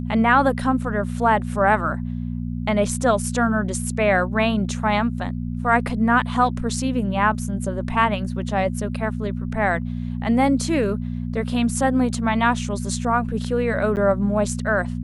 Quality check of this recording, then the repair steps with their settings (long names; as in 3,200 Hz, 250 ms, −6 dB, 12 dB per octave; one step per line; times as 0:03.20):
mains hum 60 Hz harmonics 4 −27 dBFS
0:13.96–0:13.97: drop-out 9.3 ms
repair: hum removal 60 Hz, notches 4
repair the gap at 0:13.96, 9.3 ms